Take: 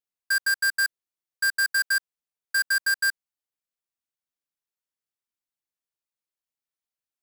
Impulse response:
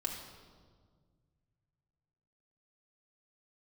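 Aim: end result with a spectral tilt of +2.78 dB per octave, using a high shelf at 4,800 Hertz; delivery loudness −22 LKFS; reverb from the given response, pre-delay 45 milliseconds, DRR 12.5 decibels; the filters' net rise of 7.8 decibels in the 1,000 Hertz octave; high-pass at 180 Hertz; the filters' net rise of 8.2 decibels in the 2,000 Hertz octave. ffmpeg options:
-filter_complex "[0:a]highpass=180,equalizer=frequency=1000:width_type=o:gain=7,equalizer=frequency=2000:width_type=o:gain=7.5,highshelf=frequency=4800:gain=5.5,asplit=2[link_01][link_02];[1:a]atrim=start_sample=2205,adelay=45[link_03];[link_02][link_03]afir=irnorm=-1:irlink=0,volume=-14.5dB[link_04];[link_01][link_04]amix=inputs=2:normalize=0,volume=-5.5dB"

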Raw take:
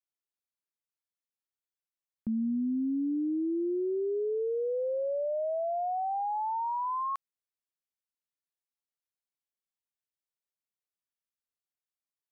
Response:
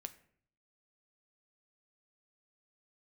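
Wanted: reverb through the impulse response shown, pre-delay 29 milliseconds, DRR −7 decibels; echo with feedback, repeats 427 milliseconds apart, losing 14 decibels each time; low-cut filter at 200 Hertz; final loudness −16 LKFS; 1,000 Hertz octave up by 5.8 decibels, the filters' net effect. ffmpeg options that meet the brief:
-filter_complex "[0:a]highpass=200,equalizer=frequency=1000:width_type=o:gain=7,aecho=1:1:427|854:0.2|0.0399,asplit=2[link_01][link_02];[1:a]atrim=start_sample=2205,adelay=29[link_03];[link_02][link_03]afir=irnorm=-1:irlink=0,volume=11dB[link_04];[link_01][link_04]amix=inputs=2:normalize=0,volume=5dB"

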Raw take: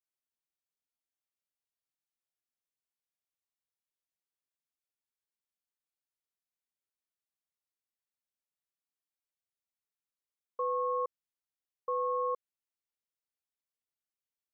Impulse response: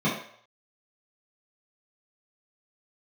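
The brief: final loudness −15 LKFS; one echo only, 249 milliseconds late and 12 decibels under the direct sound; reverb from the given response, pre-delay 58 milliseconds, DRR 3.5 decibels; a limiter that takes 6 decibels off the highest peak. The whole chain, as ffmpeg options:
-filter_complex "[0:a]alimiter=level_in=7.5dB:limit=-24dB:level=0:latency=1,volume=-7.5dB,aecho=1:1:249:0.251,asplit=2[link_01][link_02];[1:a]atrim=start_sample=2205,adelay=58[link_03];[link_02][link_03]afir=irnorm=-1:irlink=0,volume=-17dB[link_04];[link_01][link_04]amix=inputs=2:normalize=0,volume=24.5dB"

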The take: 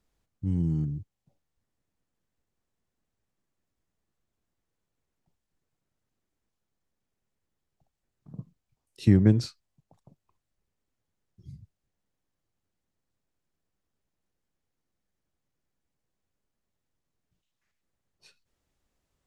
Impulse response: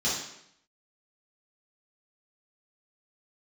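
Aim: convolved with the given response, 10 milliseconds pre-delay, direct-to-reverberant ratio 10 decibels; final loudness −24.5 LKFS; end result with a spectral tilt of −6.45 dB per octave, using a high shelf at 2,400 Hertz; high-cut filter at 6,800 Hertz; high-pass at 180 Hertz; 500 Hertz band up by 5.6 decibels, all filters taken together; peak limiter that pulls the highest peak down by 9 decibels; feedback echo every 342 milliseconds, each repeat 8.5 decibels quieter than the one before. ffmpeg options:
-filter_complex "[0:a]highpass=180,lowpass=6800,equalizer=frequency=500:width_type=o:gain=8,highshelf=frequency=2400:gain=6.5,alimiter=limit=-16dB:level=0:latency=1,aecho=1:1:342|684|1026|1368:0.376|0.143|0.0543|0.0206,asplit=2[link_01][link_02];[1:a]atrim=start_sample=2205,adelay=10[link_03];[link_02][link_03]afir=irnorm=-1:irlink=0,volume=-20dB[link_04];[link_01][link_04]amix=inputs=2:normalize=0,volume=7.5dB"

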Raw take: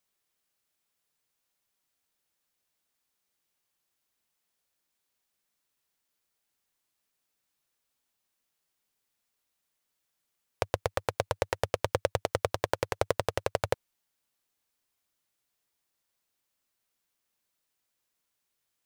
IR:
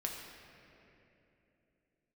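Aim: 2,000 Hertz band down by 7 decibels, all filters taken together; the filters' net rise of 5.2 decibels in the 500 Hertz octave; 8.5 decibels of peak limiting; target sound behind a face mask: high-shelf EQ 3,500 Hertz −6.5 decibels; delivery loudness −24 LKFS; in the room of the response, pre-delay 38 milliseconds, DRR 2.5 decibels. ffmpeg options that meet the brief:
-filter_complex "[0:a]equalizer=frequency=500:width_type=o:gain=6.5,equalizer=frequency=2000:width_type=o:gain=-8,alimiter=limit=-16dB:level=0:latency=1,asplit=2[link_01][link_02];[1:a]atrim=start_sample=2205,adelay=38[link_03];[link_02][link_03]afir=irnorm=-1:irlink=0,volume=-3.5dB[link_04];[link_01][link_04]amix=inputs=2:normalize=0,highshelf=frequency=3500:gain=-6.5,volume=9.5dB"

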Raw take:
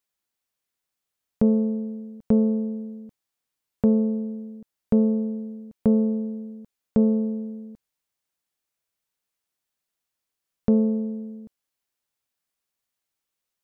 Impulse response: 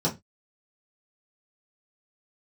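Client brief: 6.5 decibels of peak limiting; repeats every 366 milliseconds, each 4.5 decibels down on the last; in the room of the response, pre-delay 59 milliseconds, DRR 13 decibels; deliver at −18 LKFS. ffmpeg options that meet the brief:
-filter_complex "[0:a]alimiter=limit=-17dB:level=0:latency=1,aecho=1:1:366|732|1098|1464|1830|2196|2562|2928|3294:0.596|0.357|0.214|0.129|0.0772|0.0463|0.0278|0.0167|0.01,asplit=2[link_01][link_02];[1:a]atrim=start_sample=2205,adelay=59[link_03];[link_02][link_03]afir=irnorm=-1:irlink=0,volume=-23.5dB[link_04];[link_01][link_04]amix=inputs=2:normalize=0,volume=10dB"

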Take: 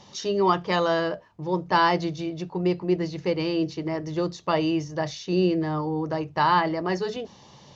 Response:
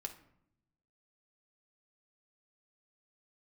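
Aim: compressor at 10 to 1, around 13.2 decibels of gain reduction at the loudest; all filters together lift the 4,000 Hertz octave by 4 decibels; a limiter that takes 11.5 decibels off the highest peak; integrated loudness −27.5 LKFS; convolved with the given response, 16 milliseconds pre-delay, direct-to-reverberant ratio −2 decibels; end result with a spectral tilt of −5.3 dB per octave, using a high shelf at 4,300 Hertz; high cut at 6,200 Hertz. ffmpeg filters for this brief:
-filter_complex "[0:a]lowpass=6200,equalizer=frequency=4000:width_type=o:gain=4.5,highshelf=frequency=4300:gain=3,acompressor=threshold=-29dB:ratio=10,alimiter=level_in=5dB:limit=-24dB:level=0:latency=1,volume=-5dB,asplit=2[link_01][link_02];[1:a]atrim=start_sample=2205,adelay=16[link_03];[link_02][link_03]afir=irnorm=-1:irlink=0,volume=4.5dB[link_04];[link_01][link_04]amix=inputs=2:normalize=0,volume=6dB"

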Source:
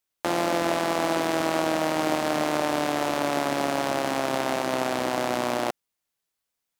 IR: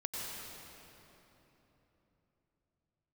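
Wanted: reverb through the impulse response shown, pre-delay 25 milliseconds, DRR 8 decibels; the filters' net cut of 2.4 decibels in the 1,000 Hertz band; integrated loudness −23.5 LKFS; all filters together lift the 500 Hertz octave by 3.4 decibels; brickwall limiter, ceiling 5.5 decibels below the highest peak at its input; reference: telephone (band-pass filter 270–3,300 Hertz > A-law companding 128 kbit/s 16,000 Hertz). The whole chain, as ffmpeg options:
-filter_complex "[0:a]equalizer=frequency=500:width_type=o:gain=7.5,equalizer=frequency=1000:width_type=o:gain=-7,alimiter=limit=-14dB:level=0:latency=1,asplit=2[link_01][link_02];[1:a]atrim=start_sample=2205,adelay=25[link_03];[link_02][link_03]afir=irnorm=-1:irlink=0,volume=-10.5dB[link_04];[link_01][link_04]amix=inputs=2:normalize=0,highpass=270,lowpass=3300,volume=3dB" -ar 16000 -c:a pcm_alaw

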